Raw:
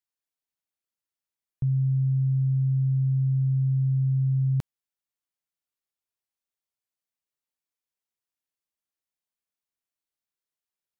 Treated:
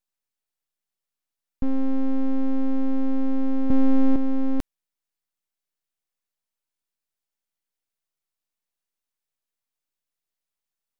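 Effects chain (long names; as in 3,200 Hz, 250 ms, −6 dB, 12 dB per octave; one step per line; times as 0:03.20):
0:03.70–0:04.16: low-shelf EQ 120 Hz +11.5 dB
full-wave rectification
level +4.5 dB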